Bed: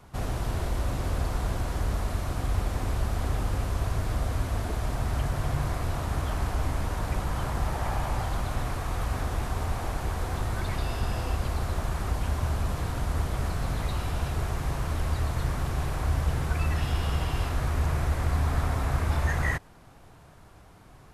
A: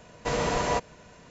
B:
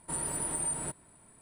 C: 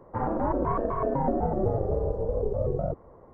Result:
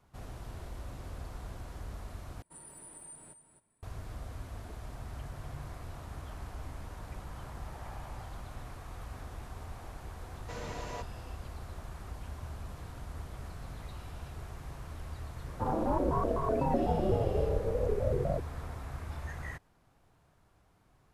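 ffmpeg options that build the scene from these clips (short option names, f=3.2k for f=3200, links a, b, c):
-filter_complex "[0:a]volume=-14.5dB[a];[2:a]aecho=1:1:263:0.316[b];[3:a]lowpass=1.4k[c];[a]asplit=2[d][e];[d]atrim=end=2.424[f];[b]atrim=end=1.41,asetpts=PTS-STARTPTS,volume=-17dB[g];[e]atrim=start=3.826[h];[1:a]atrim=end=1.3,asetpts=PTS-STARTPTS,volume=-15.5dB,afade=t=in:d=0.004:c=hsin,afade=t=out:st=1.296:d=0.004:c=hsin,adelay=10230[i];[c]atrim=end=3.33,asetpts=PTS-STARTPTS,volume=-3dB,afade=t=in:d=0.004:c=hsin,afade=t=out:st=3.326:d=0.004:c=hsin,adelay=15460[j];[f][g]acrossfade=d=0.004:c1=hsin:c2=hsin[k];[k][h]acrossfade=d=0.004:c1=hsin:c2=hsin[l];[l][i][j]amix=inputs=3:normalize=0"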